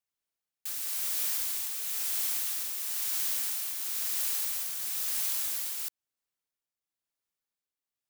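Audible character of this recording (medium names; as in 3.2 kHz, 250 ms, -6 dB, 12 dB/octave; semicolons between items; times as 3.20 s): tremolo triangle 1 Hz, depth 50%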